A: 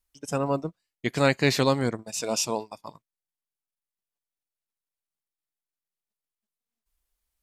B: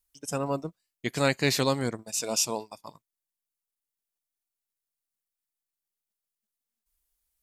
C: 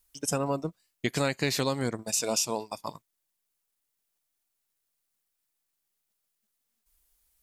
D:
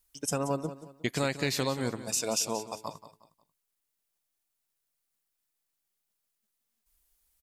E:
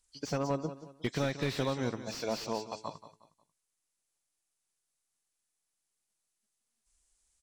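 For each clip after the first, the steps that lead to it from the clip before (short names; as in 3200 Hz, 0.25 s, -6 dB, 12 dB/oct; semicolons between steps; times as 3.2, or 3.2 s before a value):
high shelf 5700 Hz +9.5 dB; gain -3.5 dB
compressor 4:1, threshold -34 dBFS, peak gain reduction 13 dB; gain +8 dB
feedback echo 0.18 s, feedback 34%, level -13.5 dB; gain -2 dB
nonlinear frequency compression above 3100 Hz 1.5:1; slew limiter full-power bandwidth 50 Hz; gain -1.5 dB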